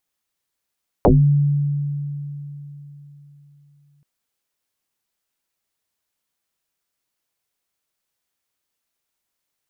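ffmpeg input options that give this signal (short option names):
-f lavfi -i "aevalsrc='0.398*pow(10,-3*t/3.76)*sin(2*PI*144*t+7.9*pow(10,-3*t/0.26)*sin(2*PI*0.79*144*t))':d=2.98:s=44100"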